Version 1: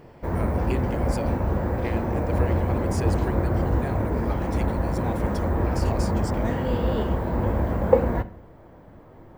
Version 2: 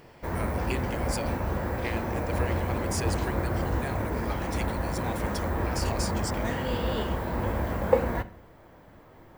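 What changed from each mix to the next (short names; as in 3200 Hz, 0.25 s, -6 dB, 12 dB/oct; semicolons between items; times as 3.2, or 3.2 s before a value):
master: add tilt shelf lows -6 dB, about 1300 Hz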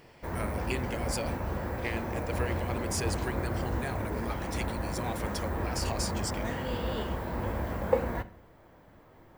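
background -4.0 dB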